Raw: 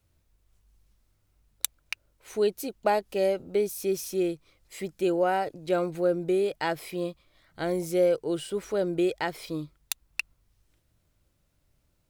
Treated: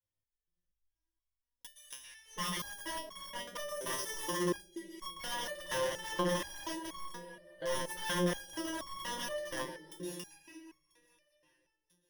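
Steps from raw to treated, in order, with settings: block-companded coder 7-bit; gate -58 dBFS, range -16 dB; in parallel at +1 dB: compression 12:1, threshold -34 dBFS, peak gain reduction 16 dB; 2.55–3.16 s: on the sum: peaking EQ 1.5 kHz -11 dB 2.4 oct; reverberation RT60 2.8 s, pre-delay 108 ms, DRR 0 dB; rotary cabinet horn 0.65 Hz, later 5 Hz, at 4.51 s; thinning echo 991 ms, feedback 40%, high-pass 680 Hz, level -24 dB; integer overflow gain 20 dB; rippled EQ curve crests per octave 1.2, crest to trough 15 dB; resonator arpeggio 4.2 Hz 130–1100 Hz; trim -1.5 dB

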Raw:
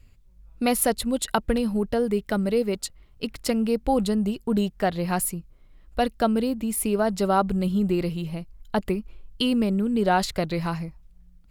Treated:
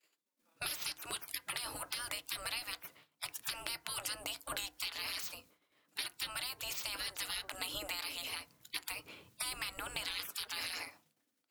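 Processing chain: expander -40 dBFS; spectral gate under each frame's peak -30 dB weak; tilt shelf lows -3.5 dB, about 1.3 kHz; compression, threshold -46 dBFS, peak gain reduction 11 dB; FDN reverb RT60 0.32 s, low-frequency decay 1.35×, high-frequency decay 0.4×, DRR 10.5 dB; trim +9.5 dB

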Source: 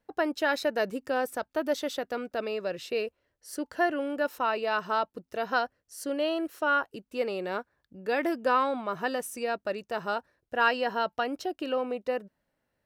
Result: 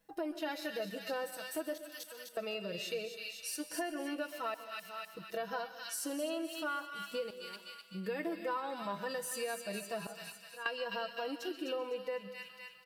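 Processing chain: treble shelf 3.9 kHz +10.5 dB; in parallel at -0.5 dB: level held to a coarse grid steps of 19 dB; on the sum: comb 6.1 ms; harmonic-percussive split percussive -15 dB; feedback comb 200 Hz, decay 0.24 s, harmonics all, mix 60%; trance gate "xxxxxxxxx...xx" 76 bpm -24 dB; feedback echo behind a high-pass 254 ms, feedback 49%, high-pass 2.6 kHz, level -4 dB; compression 4:1, threshold -45 dBFS, peak gain reduction 19 dB; on a send at -11.5 dB: peaking EQ 900 Hz -4.5 dB 0.39 oct + reverberation RT60 0.60 s, pre-delay 121 ms; on the sum: trim +7 dB

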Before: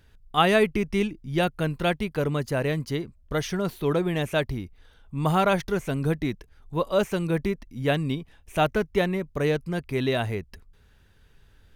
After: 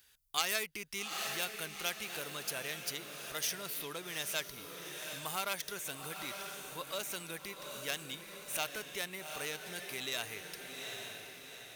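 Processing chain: tracing distortion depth 0.095 ms; bass shelf 96 Hz +12 dB; on a send: echo that smears into a reverb 818 ms, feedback 47%, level -9 dB; on the sum: compression 2.5:1, threshold -26 dBFS, peak gain reduction 9 dB; differentiator; trim +7.5 dB

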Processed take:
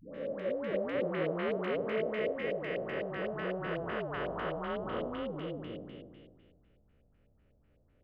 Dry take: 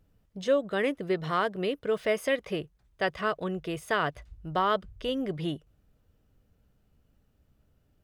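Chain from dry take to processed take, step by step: spectral blur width 981 ms; LFO low-pass square 4 Hz 570–2300 Hz; phase dispersion highs, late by 148 ms, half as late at 580 Hz

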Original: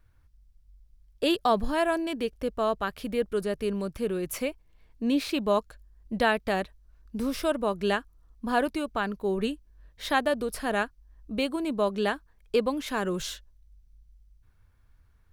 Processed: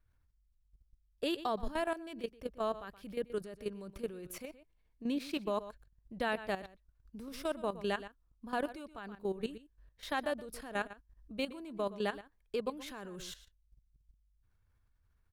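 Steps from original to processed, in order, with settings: echo from a far wall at 21 m, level -14 dB; level held to a coarse grid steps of 13 dB; trim -6.5 dB

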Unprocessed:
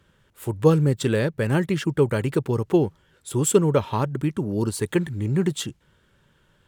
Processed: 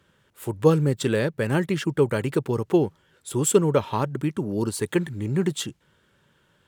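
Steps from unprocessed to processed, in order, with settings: high-pass 130 Hz 6 dB/octave

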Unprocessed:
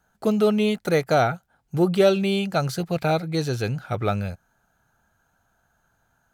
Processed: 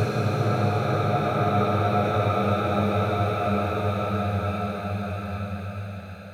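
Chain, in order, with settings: Paulstretch 8.3×, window 1.00 s, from 3.81 s; repeats whose band climbs or falls 411 ms, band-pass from 920 Hz, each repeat 0.7 oct, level -2.5 dB; trim +2.5 dB

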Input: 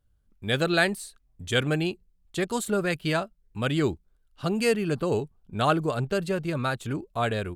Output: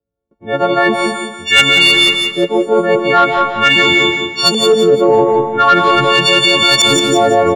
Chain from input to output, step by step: partials quantised in pitch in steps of 4 st; gate with hold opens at -55 dBFS; high-pass 160 Hz 6 dB/octave; reverse; compression 20:1, threshold -32 dBFS, peak gain reduction 20 dB; reverse; LFO low-pass saw up 0.44 Hz 430–5700 Hz; tilt EQ +2.5 dB/octave; in parallel at -11 dB: sine folder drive 9 dB, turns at -16 dBFS; on the sum: feedback delay 175 ms, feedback 33%, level -6.5 dB; reverberation RT60 0.55 s, pre-delay 115 ms, DRR 4 dB; loudness maximiser +19 dB; trim -1 dB

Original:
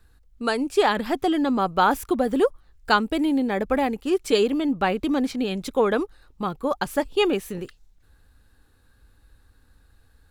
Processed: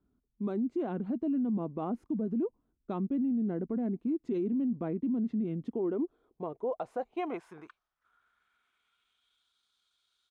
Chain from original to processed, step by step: band-pass sweep 290 Hz -> 4.7 kHz, 5.60–9.57 s; pitch shift -2.5 st; peak limiter -25.5 dBFS, peak gain reduction 9.5 dB

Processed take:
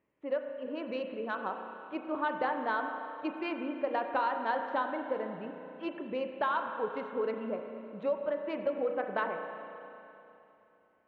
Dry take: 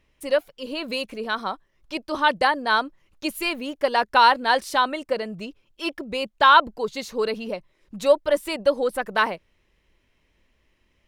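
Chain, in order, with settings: local Wiener filter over 9 samples; high-pass 200 Hz 12 dB/octave; treble shelf 3.2 kHz -11.5 dB; compression, threshold -22 dBFS, peak gain reduction 11 dB; distance through air 280 m; spring tank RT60 3 s, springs 31/35 ms, chirp 65 ms, DRR 4.5 dB; trim -5 dB

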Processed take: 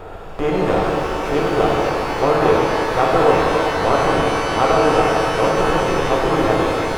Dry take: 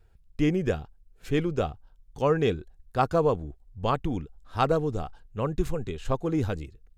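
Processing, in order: spectral levelling over time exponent 0.4; peaking EQ 790 Hz +8 dB 2.5 oct; pitch-shifted reverb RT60 3.3 s, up +12 st, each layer -8 dB, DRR -4.5 dB; trim -6 dB

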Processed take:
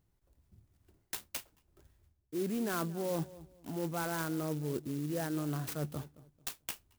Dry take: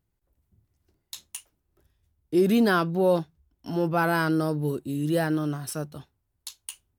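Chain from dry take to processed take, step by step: reverse; compression 6:1, threshold -36 dBFS, peak gain reduction 17.5 dB; reverse; filtered feedback delay 221 ms, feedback 32%, low-pass 940 Hz, level -17 dB; sampling jitter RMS 0.07 ms; trim +2.5 dB

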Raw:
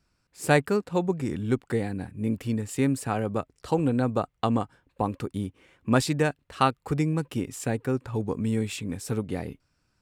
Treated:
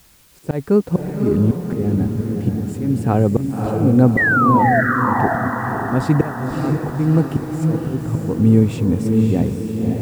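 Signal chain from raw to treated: slow attack 314 ms; tilt shelf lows +9.5 dB, about 930 Hz; painted sound fall, 4.17–4.81 s, 630–2000 Hz -22 dBFS; in parallel at -7 dB: word length cut 8-bit, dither triangular; on the sum: echo that smears into a reverb 568 ms, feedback 53%, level -3.5 dB; trim +3 dB

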